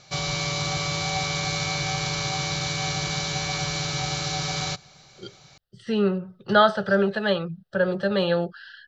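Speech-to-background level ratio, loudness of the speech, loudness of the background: 2.5 dB, −23.5 LKFS, −26.0 LKFS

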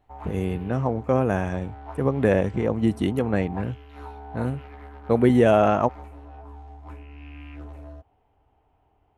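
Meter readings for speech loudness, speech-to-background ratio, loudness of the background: −23.5 LKFS, 19.0 dB, −42.5 LKFS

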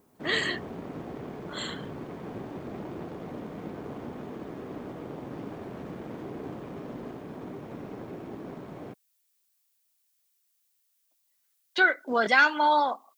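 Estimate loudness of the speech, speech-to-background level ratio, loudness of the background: −25.0 LKFS, 15.0 dB, −40.0 LKFS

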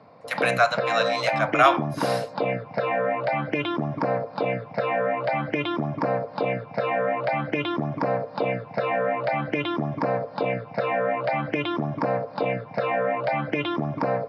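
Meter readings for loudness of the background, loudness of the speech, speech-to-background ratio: −26.5 LKFS, −23.5 LKFS, 3.0 dB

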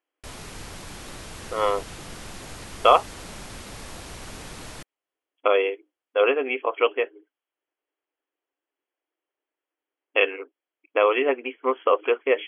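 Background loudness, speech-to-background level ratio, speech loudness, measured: −39.5 LKFS, 16.5 dB, −23.0 LKFS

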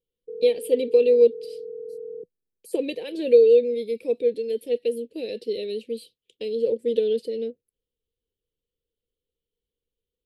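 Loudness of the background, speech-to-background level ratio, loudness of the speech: −37.0 LKFS, 14.5 dB, −22.5 LKFS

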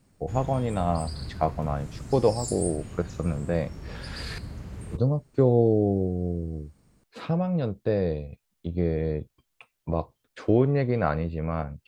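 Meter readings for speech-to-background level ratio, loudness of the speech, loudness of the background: 11.5 dB, −27.0 LKFS, −38.5 LKFS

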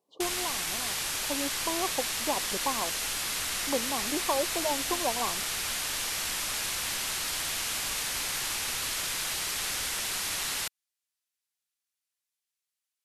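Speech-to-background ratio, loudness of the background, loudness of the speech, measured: −5.0 dB, −29.5 LKFS, −34.5 LKFS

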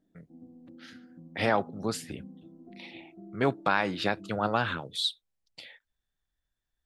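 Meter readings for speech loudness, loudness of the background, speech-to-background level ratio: −29.5 LKFS, −49.5 LKFS, 20.0 dB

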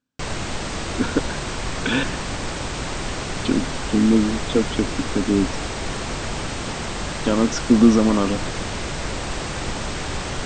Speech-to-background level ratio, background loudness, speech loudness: 6.5 dB, −27.5 LKFS, −21.0 LKFS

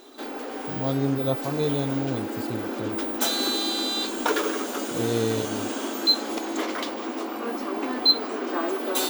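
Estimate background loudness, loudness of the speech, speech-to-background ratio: −26.5 LKFS, −29.0 LKFS, −2.5 dB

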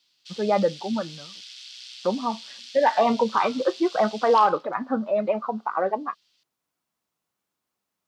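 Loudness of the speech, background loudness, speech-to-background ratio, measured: −24.0 LKFS, −40.0 LKFS, 16.0 dB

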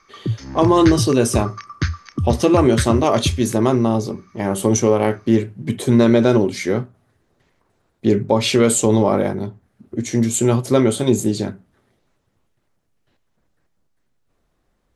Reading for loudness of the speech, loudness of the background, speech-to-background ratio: −17.5 LKFS, −25.0 LKFS, 7.5 dB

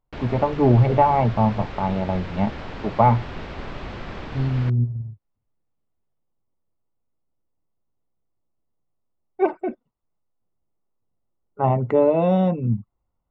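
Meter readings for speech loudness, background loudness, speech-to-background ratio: −21.0 LKFS, −35.5 LKFS, 14.5 dB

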